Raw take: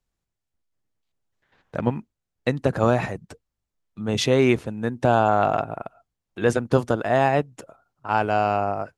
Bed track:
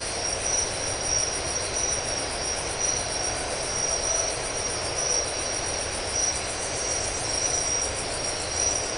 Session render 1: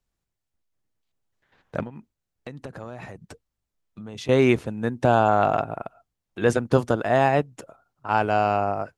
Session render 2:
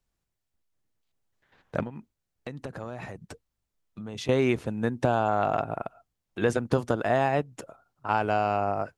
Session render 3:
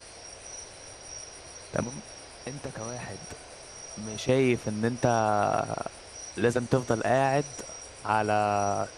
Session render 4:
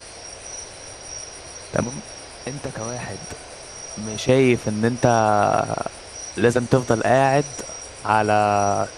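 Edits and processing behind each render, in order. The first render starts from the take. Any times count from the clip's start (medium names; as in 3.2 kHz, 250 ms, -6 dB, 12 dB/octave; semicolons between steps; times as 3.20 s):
1.83–4.29 s: compression 4:1, threshold -36 dBFS
compression 3:1, threshold -21 dBFS, peak gain reduction 7.5 dB
add bed track -17 dB
trim +7.5 dB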